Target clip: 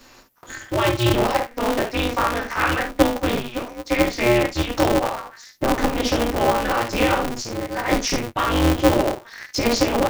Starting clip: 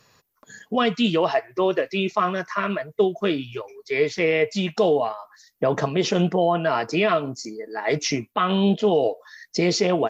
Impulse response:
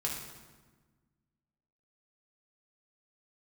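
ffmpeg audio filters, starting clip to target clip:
-filter_complex "[0:a]asettb=1/sr,asplit=3[a][b][c];[a]atrim=end=2.604[d];[b]atrim=start=2.6:end=3.2,asetpts=PTS-STARTPTS,afade=t=in:d=0.004:c=qsin,afade=t=out:st=0.596:d=0.004:c=qsin,equalizer=f=1.7k:w=0.77:g=9[e];[c]atrim=start=3.196[f];[d][e]acrossfade=d=0.004:c1=hsin:c2=qsin[g];[g][f]acrossfade=d=0.004:c1=qsin:c2=hsin,acompressor=threshold=-44dB:ratio=1.5[h];[1:a]atrim=start_sample=2205,atrim=end_sample=3528[i];[h][i]afir=irnorm=-1:irlink=0,aeval=exprs='val(0)*sgn(sin(2*PI*120*n/s))':c=same,volume=7.5dB"

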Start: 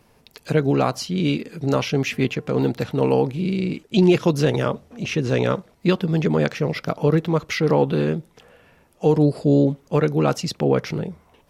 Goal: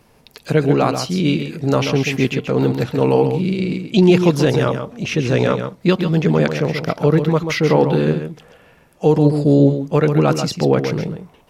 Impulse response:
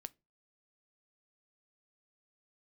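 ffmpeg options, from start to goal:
-filter_complex "[0:a]asplit=2[a][b];[1:a]atrim=start_sample=2205,adelay=135[c];[b][c]afir=irnorm=-1:irlink=0,volume=-3dB[d];[a][d]amix=inputs=2:normalize=0,volume=3.5dB"

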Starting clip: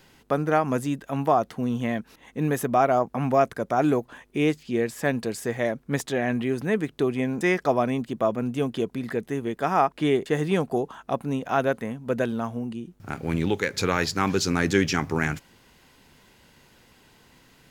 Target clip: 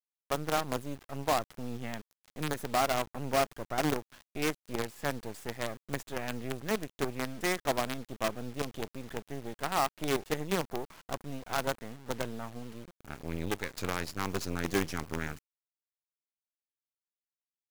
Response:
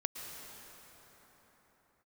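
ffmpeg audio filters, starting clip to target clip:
-af "adynamicequalizer=threshold=0.0141:dfrequency=2500:dqfactor=0.8:tfrequency=2500:tqfactor=0.8:attack=5:release=100:ratio=0.375:range=2:mode=cutabove:tftype=bell,acrusher=bits=4:dc=4:mix=0:aa=0.000001,volume=-8.5dB"

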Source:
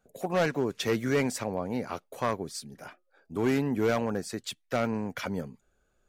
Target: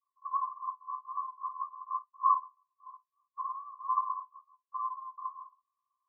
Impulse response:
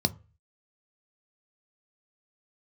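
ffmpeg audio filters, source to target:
-filter_complex "[0:a]aemphasis=mode=reproduction:type=riaa,volume=18dB,asoftclip=hard,volume=-18dB,asuperpass=centerf=1100:order=20:qfactor=7.1[a];[1:a]atrim=start_sample=2205,atrim=end_sample=3087[b];[a][b]afir=irnorm=-1:irlink=0,volume=6.5dB"

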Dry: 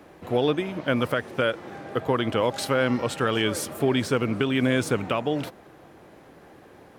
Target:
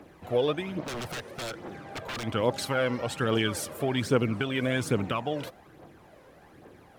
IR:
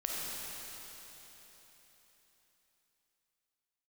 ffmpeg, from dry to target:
-filter_complex "[0:a]aphaser=in_gain=1:out_gain=1:delay=2.1:decay=0.49:speed=1.2:type=triangular,asettb=1/sr,asplit=3[a][b][c];[a]atrim=end=0.854[d];[b]atrim=start=0.85:end=2.24,asetpts=PTS-STARTPTS,afade=t=in:d=0.004:c=qsin,afade=t=out:st=1.386:d=0.004:c=qsin,aeval=exprs='0.0531*(abs(mod(val(0)/0.0531+3,4)-2)-1)':c=same[e];[c]atrim=start=2.236[f];[d][e]acrossfade=d=0.004:c1=hsin:c2=qsin[g];[g][f]acrossfade=d=0.004:c1=qsin:c2=hsin,volume=-4.5dB"

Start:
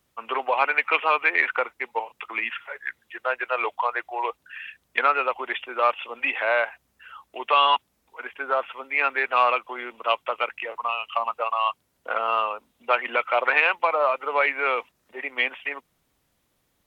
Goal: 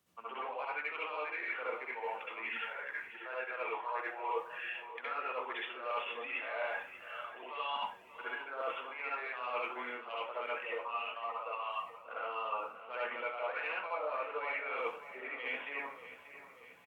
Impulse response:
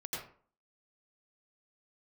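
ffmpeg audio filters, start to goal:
-filter_complex "[0:a]highpass=f=84:w=0.5412,highpass=f=84:w=1.3066,areverse,acompressor=threshold=-36dB:ratio=6,areverse,aecho=1:1:586|1172|1758|2344|2930:0.211|0.114|0.0616|0.0333|0.018[a];[1:a]atrim=start_sample=2205,asetrate=57330,aresample=44100[b];[a][b]afir=irnorm=-1:irlink=0,volume=1dB"

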